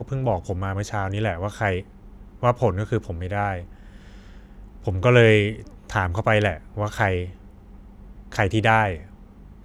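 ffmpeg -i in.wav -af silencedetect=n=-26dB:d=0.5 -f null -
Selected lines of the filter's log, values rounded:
silence_start: 1.80
silence_end: 2.43 | silence_duration: 0.63
silence_start: 3.59
silence_end: 4.87 | silence_duration: 1.28
silence_start: 7.25
silence_end: 8.32 | silence_duration: 1.07
silence_start: 8.96
silence_end: 9.65 | silence_duration: 0.69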